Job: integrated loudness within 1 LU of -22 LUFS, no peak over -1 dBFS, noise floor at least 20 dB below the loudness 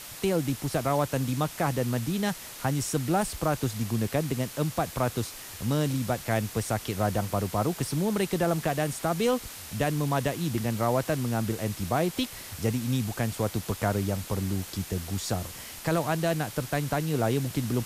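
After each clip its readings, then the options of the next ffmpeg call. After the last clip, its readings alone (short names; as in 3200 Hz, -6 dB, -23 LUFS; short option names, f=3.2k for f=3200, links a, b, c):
noise floor -43 dBFS; noise floor target -49 dBFS; loudness -29.0 LUFS; peak -12.5 dBFS; loudness target -22.0 LUFS
-> -af "afftdn=nr=6:nf=-43"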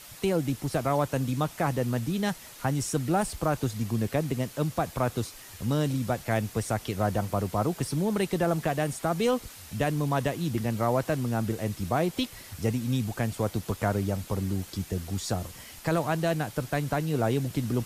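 noise floor -47 dBFS; noise floor target -49 dBFS
-> -af "afftdn=nr=6:nf=-47"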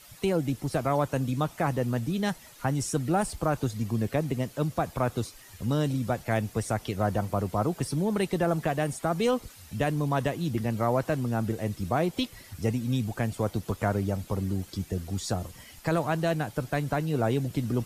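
noise floor -51 dBFS; loudness -29.0 LUFS; peak -13.0 dBFS; loudness target -22.0 LUFS
-> -af "volume=7dB"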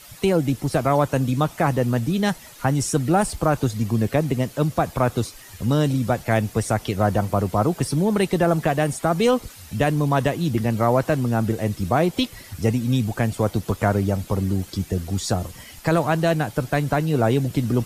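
loudness -22.0 LUFS; peak -6.0 dBFS; noise floor -44 dBFS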